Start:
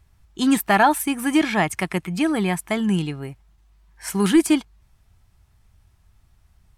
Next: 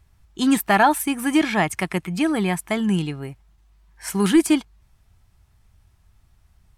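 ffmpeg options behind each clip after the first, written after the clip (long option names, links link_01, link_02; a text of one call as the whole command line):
ffmpeg -i in.wav -af anull out.wav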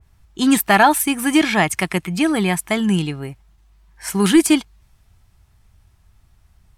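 ffmpeg -i in.wav -af "adynamicequalizer=threshold=0.0316:dfrequency=2000:dqfactor=0.7:tfrequency=2000:tqfactor=0.7:attack=5:release=100:ratio=0.375:range=2:mode=boostabove:tftype=highshelf,volume=3dB" out.wav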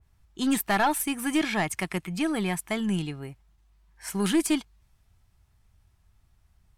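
ffmpeg -i in.wav -af "aeval=exprs='(tanh(2.24*val(0)+0.2)-tanh(0.2))/2.24':channel_layout=same,volume=-8.5dB" out.wav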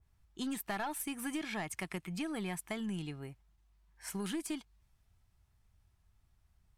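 ffmpeg -i in.wav -af "acompressor=threshold=-28dB:ratio=6,volume=-7dB" out.wav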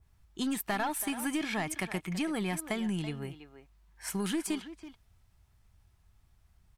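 ffmpeg -i in.wav -filter_complex "[0:a]asplit=2[link_01][link_02];[link_02]adelay=330,highpass=300,lowpass=3400,asoftclip=type=hard:threshold=-35.5dB,volume=-10dB[link_03];[link_01][link_03]amix=inputs=2:normalize=0,volume=5.5dB" out.wav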